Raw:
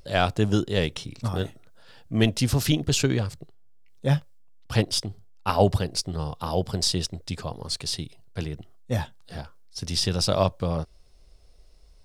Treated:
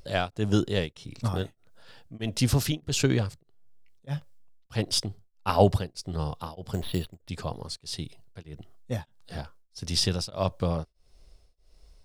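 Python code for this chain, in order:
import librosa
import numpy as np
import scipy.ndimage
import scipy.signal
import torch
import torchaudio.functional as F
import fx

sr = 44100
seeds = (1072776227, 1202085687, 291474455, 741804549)

y = fx.resample_bad(x, sr, factor=6, down='filtered', up='hold', at=(6.73, 7.29))
y = y * np.abs(np.cos(np.pi * 1.6 * np.arange(len(y)) / sr))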